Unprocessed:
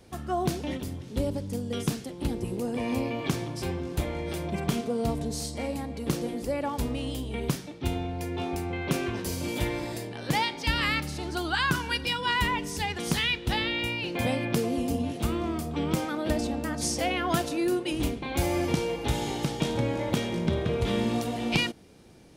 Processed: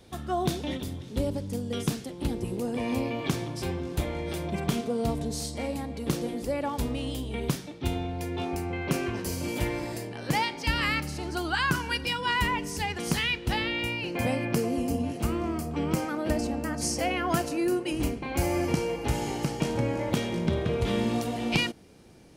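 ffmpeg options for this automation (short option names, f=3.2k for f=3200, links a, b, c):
-af "asetnsamples=n=441:p=0,asendcmd='1.09 equalizer g 1.5;8.45 equalizer g -8;13.98 equalizer g -14;20.11 equalizer g -2.5',equalizer=f=3.6k:t=o:w=0.21:g=8.5"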